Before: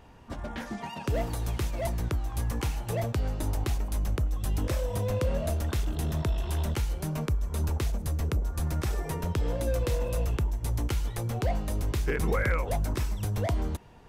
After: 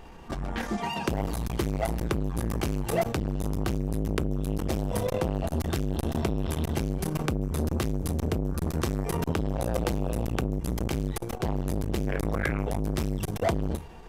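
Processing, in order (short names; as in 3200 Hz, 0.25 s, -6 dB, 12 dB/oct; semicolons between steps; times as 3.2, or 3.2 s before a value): reverb RT60 0.25 s, pre-delay 3 ms, DRR 5 dB; in parallel at -2 dB: negative-ratio compressor -27 dBFS, ratio -0.5; on the sum: core saturation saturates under 510 Hz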